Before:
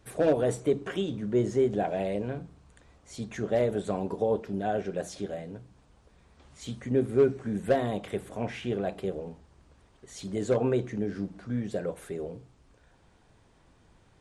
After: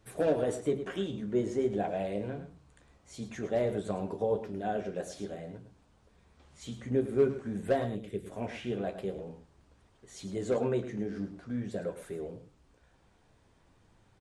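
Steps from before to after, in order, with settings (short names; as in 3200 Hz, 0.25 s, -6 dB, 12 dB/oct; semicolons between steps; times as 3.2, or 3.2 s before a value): 7.84–8.26 EQ curve 420 Hz 0 dB, 840 Hz -20 dB, 2500 Hz -6 dB; on a send: echo 0.107 s -11 dB; on the sum: flange 0.5 Hz, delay 8.9 ms, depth 6.4 ms, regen -50%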